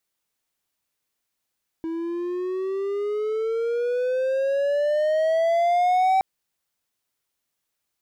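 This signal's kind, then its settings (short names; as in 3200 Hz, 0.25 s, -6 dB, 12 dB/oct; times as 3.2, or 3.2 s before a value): gliding synth tone triangle, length 4.37 s, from 324 Hz, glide +15 st, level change +10 dB, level -14 dB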